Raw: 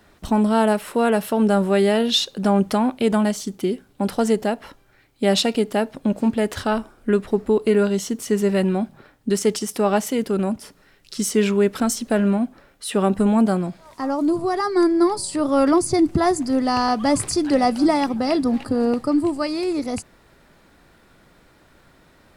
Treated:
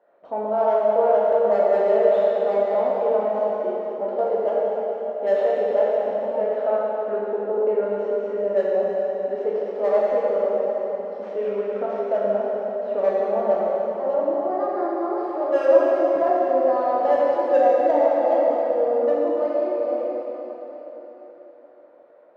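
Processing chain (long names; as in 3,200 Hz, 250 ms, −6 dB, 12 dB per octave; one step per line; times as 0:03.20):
stylus tracing distortion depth 0.23 ms
four-pole ladder band-pass 600 Hz, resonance 75%
in parallel at −11 dB: wave folding −20.5 dBFS
on the sum: high-frequency loss of the air 53 metres
dense smooth reverb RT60 4.2 s, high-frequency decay 0.9×, DRR −7 dB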